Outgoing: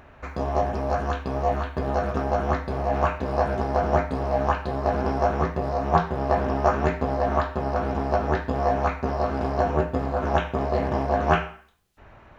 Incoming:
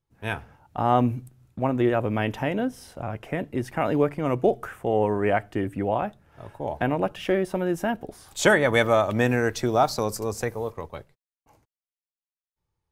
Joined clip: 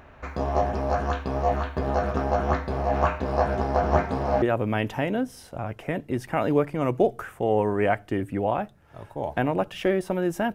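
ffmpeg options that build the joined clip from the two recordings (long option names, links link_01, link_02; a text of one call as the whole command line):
ffmpeg -i cue0.wav -i cue1.wav -filter_complex "[0:a]asplit=3[link_01][link_02][link_03];[link_01]afade=type=out:start_time=3.9:duration=0.02[link_04];[link_02]aecho=1:1:513:0.422,afade=type=in:start_time=3.9:duration=0.02,afade=type=out:start_time=4.42:duration=0.02[link_05];[link_03]afade=type=in:start_time=4.42:duration=0.02[link_06];[link_04][link_05][link_06]amix=inputs=3:normalize=0,apad=whole_dur=10.54,atrim=end=10.54,atrim=end=4.422[link_07];[1:a]atrim=start=1.858:end=7.98[link_08];[link_07][link_08]acrossfade=duration=0.004:curve1=hsin:curve2=hsin" out.wav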